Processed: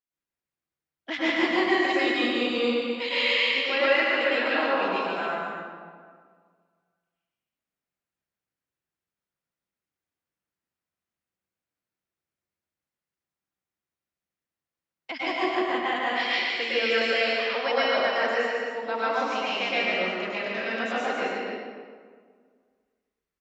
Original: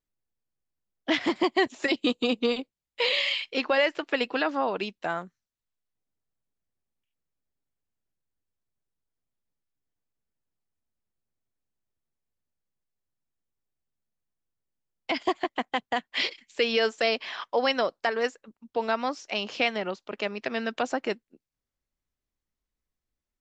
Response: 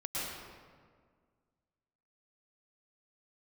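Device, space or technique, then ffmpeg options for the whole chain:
stadium PA: -filter_complex "[0:a]highpass=f=180:p=1,equalizer=f=1800:t=o:w=1.4:g=5,aecho=1:1:145.8|268.2:0.562|0.398[s0];[1:a]atrim=start_sample=2205[s1];[s0][s1]afir=irnorm=-1:irlink=0,volume=0.562"

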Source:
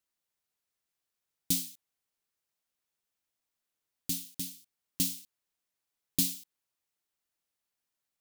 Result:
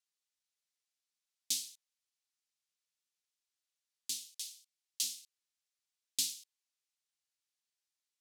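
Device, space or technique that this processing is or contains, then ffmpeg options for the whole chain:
piezo pickup straight into a mixer: -filter_complex "[0:a]asplit=3[s0][s1][s2];[s0]afade=t=out:st=4.26:d=0.02[s3];[s1]highpass=1400,afade=t=in:st=4.26:d=0.02,afade=t=out:st=5.02:d=0.02[s4];[s2]afade=t=in:st=5.02:d=0.02[s5];[s3][s4][s5]amix=inputs=3:normalize=0,lowpass=5600,aderivative,volume=1.88"

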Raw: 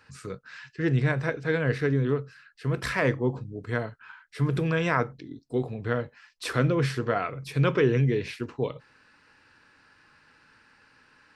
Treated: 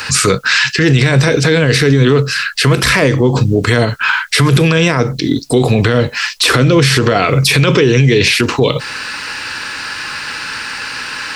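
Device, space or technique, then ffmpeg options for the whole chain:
mastering chain: -filter_complex "[0:a]equalizer=f=1700:t=o:w=0.77:g=-3,acrossover=split=510|3400[s0][s1][s2];[s0]acompressor=threshold=0.0562:ratio=4[s3];[s1]acompressor=threshold=0.00708:ratio=4[s4];[s2]acompressor=threshold=0.00316:ratio=4[s5];[s3][s4][s5]amix=inputs=3:normalize=0,acompressor=threshold=0.0158:ratio=1.5,tiltshelf=f=1100:g=-7.5,asoftclip=type=hard:threshold=0.0501,alimiter=level_in=63.1:limit=0.891:release=50:level=0:latency=1,volume=0.891"

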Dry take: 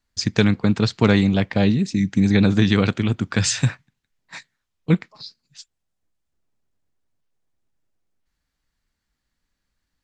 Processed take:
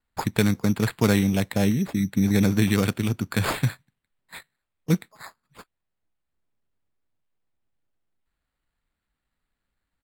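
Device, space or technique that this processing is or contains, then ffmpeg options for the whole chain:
crushed at another speed: -af "asetrate=55125,aresample=44100,acrusher=samples=6:mix=1:aa=0.000001,asetrate=35280,aresample=44100,volume=0.631"

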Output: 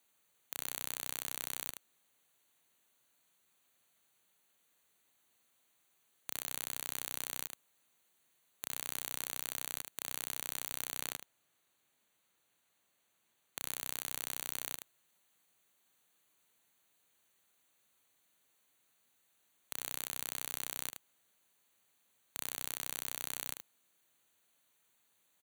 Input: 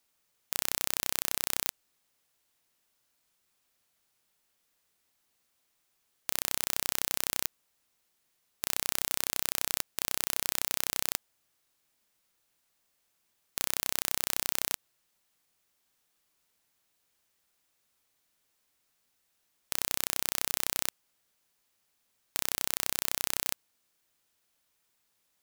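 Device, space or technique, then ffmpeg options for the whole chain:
PA system with an anti-feedback notch: -filter_complex "[0:a]asettb=1/sr,asplit=3[s0][s1][s2];[s0]atrim=end=11.014[s3];[s1]atrim=start=11.01:end=13.59,asetpts=PTS-STARTPTS,afade=t=in:d=0.004:c=qsin,afade=t=out:st=2.576:d=0.004:c=qsin,highshelf=f=7100:g=-5[s4];[s2]atrim=start=13.586[s5];[s3][s4]acrossfade=d=0.004:c1=hsin:c2=qsin[s6];[s6][s5]acrossfade=d=0.004:c1=qsin:c2=hsin,highpass=100,asuperstop=centerf=5200:order=8:qfactor=4.1,aecho=1:1:76:0.15,alimiter=limit=0.224:level=0:latency=1:release=44,volume=1.12"

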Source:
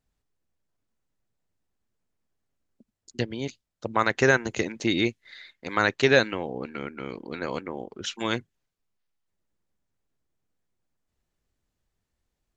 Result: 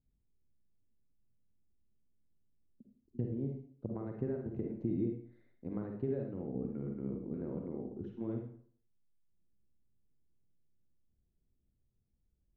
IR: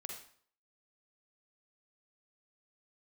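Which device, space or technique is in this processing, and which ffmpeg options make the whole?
television next door: -filter_complex "[0:a]acompressor=threshold=0.0316:ratio=3,lowpass=260[s0];[1:a]atrim=start_sample=2205[s1];[s0][s1]afir=irnorm=-1:irlink=0,volume=2"

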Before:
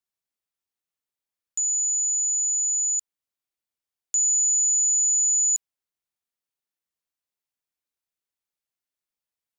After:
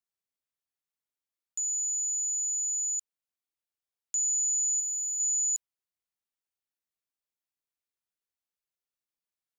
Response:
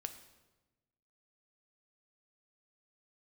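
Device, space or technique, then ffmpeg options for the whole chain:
parallel distortion: -filter_complex "[0:a]asplit=2[s0][s1];[s1]asoftclip=type=hard:threshold=0.02,volume=0.224[s2];[s0][s2]amix=inputs=2:normalize=0,asettb=1/sr,asplit=3[s3][s4][s5];[s3]atrim=end=4.804[s6];[s4]atrim=start=4.8:end=5.2,asetpts=PTS-STARTPTS,afade=t=in:d=0.004:c=qsin,afade=t=out:st=0.396:d=0.004:c=qsin,bandreject=f=6600:w=6.3[s7];[s5]atrim=start=5.196[s8];[s6][s7]acrossfade=d=0.004:c1=hsin:c2=qsin[s9];[s9][s8]acrossfade=d=0.004:c1=qsin:c2=hsin,volume=0.447"

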